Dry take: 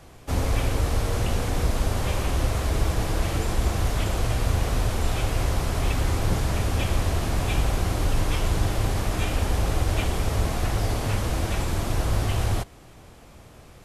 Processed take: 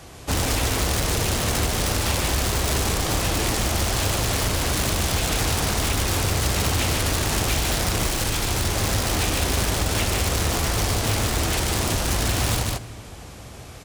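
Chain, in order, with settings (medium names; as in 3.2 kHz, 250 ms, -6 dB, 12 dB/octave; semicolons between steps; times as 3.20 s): in parallel at -2 dB: integer overflow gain 19 dB; on the sum: treble shelf 9.5 kHz -7.5 dB; delay 147 ms -4 dB; on a send at -18 dB: reverberation RT60 2.0 s, pre-delay 3 ms; on the sum: compression, threshold -18 dBFS, peak gain reduction 5.5 dB; high-pass 42 Hz 12 dB/octave; treble shelf 3.9 kHz +11 dB; loudspeaker Doppler distortion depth 0.64 ms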